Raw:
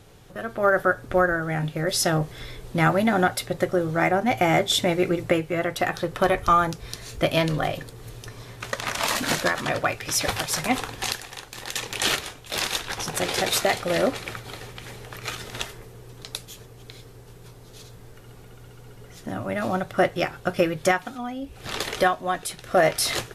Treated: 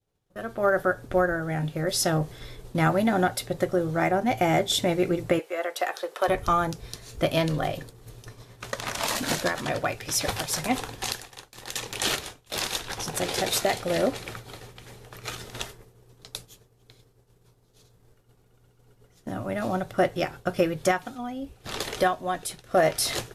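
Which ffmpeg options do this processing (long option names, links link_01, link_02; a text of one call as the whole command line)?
ffmpeg -i in.wav -filter_complex "[0:a]asettb=1/sr,asplit=3[link_01][link_02][link_03];[link_01]atrim=end=5.394[link_04];[link_02]atrim=start=5.39:end=6.28,asetpts=PTS-STARTPTS,afade=type=in:duration=0.004:curve=qsin,afade=type=out:start_time=0.886:duration=0.004:curve=qsin,highpass=frequency=430:width=0.5412,highpass=frequency=430:width=1.3066[link_05];[link_03]atrim=start=6.276[link_06];[link_04][link_05]acrossfade=duration=0.004:curve1=hsin:curve2=qsin[link_07];[link_07][link_06]acrossfade=duration=0.004:curve1=qsin:curve2=hsin,equalizer=frequency=2100:width_type=o:width=1.5:gain=-3.5,agate=range=-33dB:threshold=-35dB:ratio=3:detection=peak,adynamicequalizer=threshold=0.00708:dfrequency=1200:dqfactor=3.8:tfrequency=1200:tqfactor=3.8:attack=5:release=100:ratio=0.375:range=2:mode=cutabove:tftype=bell,volume=-1.5dB" out.wav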